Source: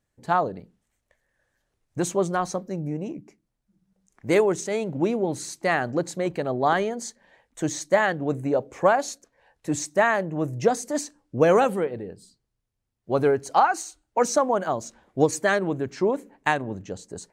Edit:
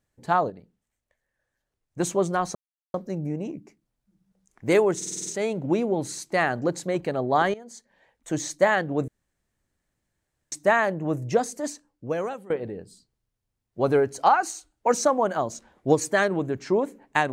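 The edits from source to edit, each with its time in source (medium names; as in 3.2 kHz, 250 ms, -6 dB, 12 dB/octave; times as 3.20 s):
0.50–2.00 s: gain -7 dB
2.55 s: insert silence 0.39 s
4.57 s: stutter 0.05 s, 7 plays
6.85–7.79 s: fade in, from -16.5 dB
8.39–9.83 s: room tone
10.46–11.81 s: fade out, to -21 dB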